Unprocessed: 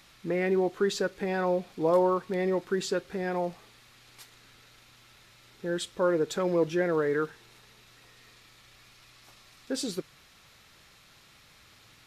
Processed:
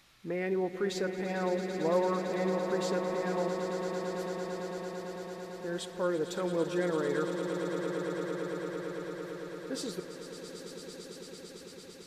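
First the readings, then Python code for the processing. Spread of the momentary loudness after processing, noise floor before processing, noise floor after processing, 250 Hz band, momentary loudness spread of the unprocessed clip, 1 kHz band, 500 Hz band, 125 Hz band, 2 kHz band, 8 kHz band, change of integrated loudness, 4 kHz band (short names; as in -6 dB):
13 LU, -58 dBFS, -49 dBFS, -2.0 dB, 8 LU, -2.5 dB, -3.0 dB, -1.0 dB, -2.5 dB, -2.5 dB, -5.0 dB, -2.5 dB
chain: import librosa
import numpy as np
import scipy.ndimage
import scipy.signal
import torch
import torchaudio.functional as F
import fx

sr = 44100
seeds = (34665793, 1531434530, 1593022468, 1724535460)

y = fx.echo_swell(x, sr, ms=112, loudest=8, wet_db=-11.5)
y = y * librosa.db_to_amplitude(-5.5)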